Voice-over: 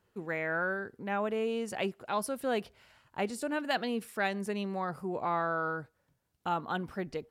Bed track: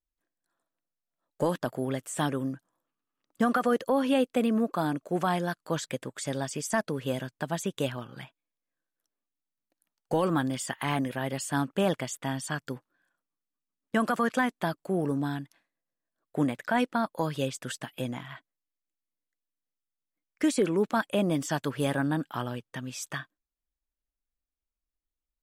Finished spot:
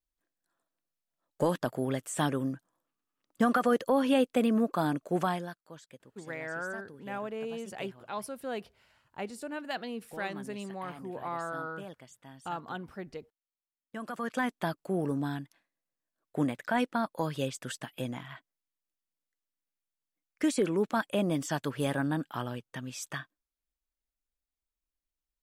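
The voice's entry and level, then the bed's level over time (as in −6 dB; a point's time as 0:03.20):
6.00 s, −5.0 dB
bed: 0:05.22 −0.5 dB
0:05.73 −19 dB
0:13.78 −19 dB
0:14.49 −2.5 dB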